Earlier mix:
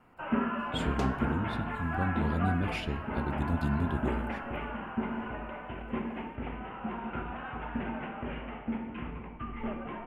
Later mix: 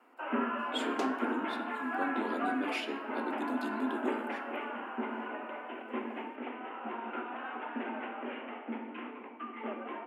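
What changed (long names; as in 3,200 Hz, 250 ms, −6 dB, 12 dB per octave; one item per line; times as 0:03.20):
speech: send +6.0 dB
master: add Butterworth high-pass 240 Hz 72 dB per octave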